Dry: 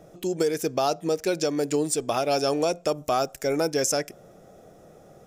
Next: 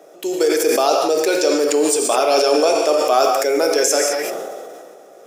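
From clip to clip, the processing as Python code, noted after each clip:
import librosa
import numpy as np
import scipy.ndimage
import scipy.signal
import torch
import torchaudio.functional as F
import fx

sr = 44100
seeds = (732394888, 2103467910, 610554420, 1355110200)

y = scipy.signal.sosfilt(scipy.signal.butter(4, 330.0, 'highpass', fs=sr, output='sos'), x)
y = fx.rev_gated(y, sr, seeds[0], gate_ms=230, shape='flat', drr_db=3.0)
y = fx.sustainer(y, sr, db_per_s=27.0)
y = y * librosa.db_to_amplitude(6.5)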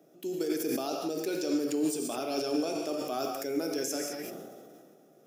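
y = fx.graphic_eq(x, sr, hz=(125, 250, 500, 1000, 2000, 4000, 8000), db=(12, 5, -11, -11, -8, -5, -10))
y = y * librosa.db_to_amplitude(-8.0)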